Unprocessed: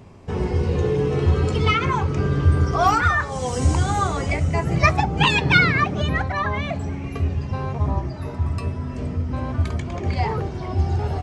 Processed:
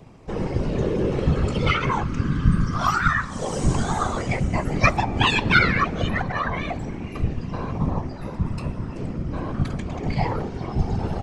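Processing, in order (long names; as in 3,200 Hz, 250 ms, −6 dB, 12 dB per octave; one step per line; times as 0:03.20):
0:02.03–0:03.39: flat-topped bell 520 Hz −12 dB
random phases in short frames
on a send: convolution reverb RT60 2.0 s, pre-delay 106 ms, DRR 22 dB
on the sum: level −2 dB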